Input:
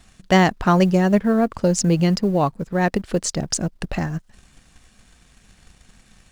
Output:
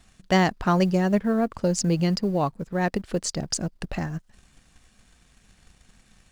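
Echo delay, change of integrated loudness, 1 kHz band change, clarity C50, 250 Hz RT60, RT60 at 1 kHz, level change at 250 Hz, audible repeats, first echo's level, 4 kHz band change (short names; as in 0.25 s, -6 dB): none, -5.0 dB, -5.0 dB, none, none, none, -5.0 dB, none, none, -3.5 dB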